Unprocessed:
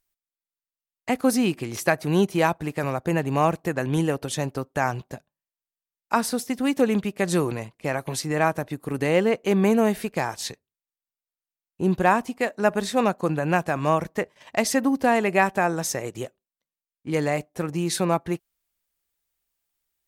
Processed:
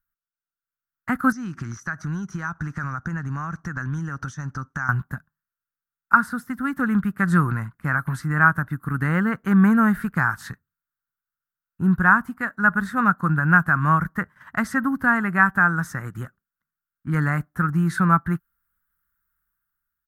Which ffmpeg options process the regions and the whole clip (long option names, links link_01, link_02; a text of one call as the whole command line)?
ffmpeg -i in.wav -filter_complex "[0:a]asettb=1/sr,asplit=3[link_01][link_02][link_03];[link_01]atrim=end=1.324[link_04];[link_02]atrim=start=1.32:end=4.89,asetpts=PTS-STARTPTS,afade=type=in:duration=0.004:curve=qsin,afade=type=out:start_time=3.566:duration=0.004:curve=qsin,lowpass=frequency=6000:width_type=q:width=14,acompressor=threshold=-30dB:ratio=6:attack=3.2:release=140:knee=1:detection=peak[link_05];[link_03]atrim=start=4.886[link_06];[link_04][link_05]acrossfade=duration=0.004:curve1=hsin:curve2=qsin[link_07];[link_07][link_06]acrossfade=duration=0.004:curve1=qsin:curve2=hsin,acrossover=split=8600[link_08][link_09];[link_09]acompressor=threshold=-48dB:ratio=4:attack=1:release=60[link_10];[link_08][link_10]amix=inputs=2:normalize=0,firequalizer=gain_entry='entry(170,0);entry(410,-21);entry(590,-22);entry(1400,10);entry(2400,-20);entry(5800,-22);entry(13000,-5)':delay=0.05:min_phase=1,dynaudnorm=framelen=120:gausssize=13:maxgain=9dB" out.wav